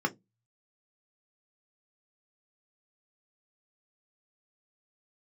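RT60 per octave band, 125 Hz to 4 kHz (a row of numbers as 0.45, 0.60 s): 0.65, 0.30, 0.20, 0.15, 0.10, 0.10 s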